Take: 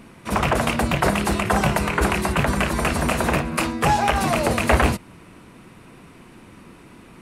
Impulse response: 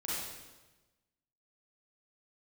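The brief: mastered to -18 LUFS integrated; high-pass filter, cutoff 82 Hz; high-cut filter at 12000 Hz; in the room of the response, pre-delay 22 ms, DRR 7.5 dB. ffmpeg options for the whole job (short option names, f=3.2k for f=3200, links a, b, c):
-filter_complex "[0:a]highpass=82,lowpass=12k,asplit=2[a][b];[1:a]atrim=start_sample=2205,adelay=22[c];[b][c]afir=irnorm=-1:irlink=0,volume=-11dB[d];[a][d]amix=inputs=2:normalize=0,volume=2.5dB"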